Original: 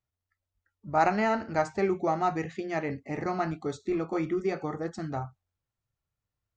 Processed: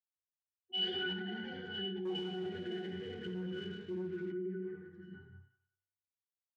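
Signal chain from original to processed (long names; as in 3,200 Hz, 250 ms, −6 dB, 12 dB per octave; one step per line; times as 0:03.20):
Butterworth band-reject 670 Hz, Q 0.72
high-shelf EQ 5,300 Hz −11 dB
delay with a band-pass on its return 184 ms, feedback 37%, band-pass 1,500 Hz, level −4 dB
convolution reverb RT60 0.50 s, pre-delay 75 ms, DRR 1 dB
delay with pitch and tempo change per echo 108 ms, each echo +5 semitones, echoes 3
resonances in every octave F#, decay 0.35 s
0:02.05–0:04.32: leveller curve on the samples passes 1
brickwall limiter −39 dBFS, peak gain reduction 13.5 dB
meter weighting curve D
multiband upward and downward expander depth 70%
level +6.5 dB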